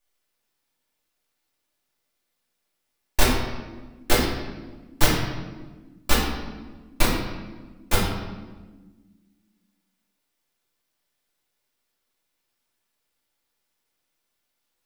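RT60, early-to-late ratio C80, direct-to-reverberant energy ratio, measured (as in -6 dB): 1.3 s, 4.5 dB, -7.5 dB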